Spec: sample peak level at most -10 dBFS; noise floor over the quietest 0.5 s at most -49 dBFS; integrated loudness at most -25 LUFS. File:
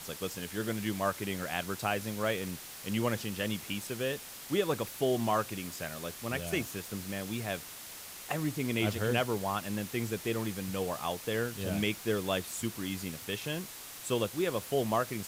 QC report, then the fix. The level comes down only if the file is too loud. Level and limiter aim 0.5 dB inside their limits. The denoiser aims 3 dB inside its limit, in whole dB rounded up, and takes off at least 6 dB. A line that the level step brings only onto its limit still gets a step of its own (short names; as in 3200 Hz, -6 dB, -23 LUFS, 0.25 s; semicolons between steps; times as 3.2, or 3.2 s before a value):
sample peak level -16.5 dBFS: OK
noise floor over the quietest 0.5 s -46 dBFS: fail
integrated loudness -34.0 LUFS: OK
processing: denoiser 6 dB, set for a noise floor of -46 dBFS